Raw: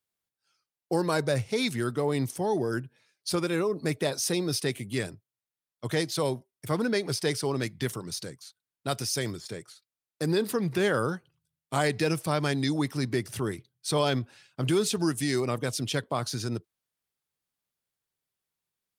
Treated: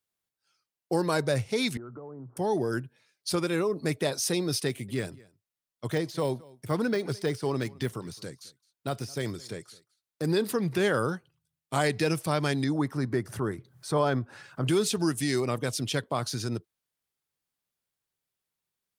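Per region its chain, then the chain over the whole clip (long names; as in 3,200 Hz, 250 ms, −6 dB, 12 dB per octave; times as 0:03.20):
0:01.77–0:02.37: Chebyshev band-pass filter 120–1,400 Hz, order 5 + downward compressor 10 to 1, threshold −39 dBFS
0:04.67–0:10.25: de-essing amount 95% + single-tap delay 215 ms −23.5 dB
0:12.64–0:14.67: high shelf with overshoot 2,000 Hz −8.5 dB, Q 1.5 + upward compression, threshold −34 dBFS
whole clip: no processing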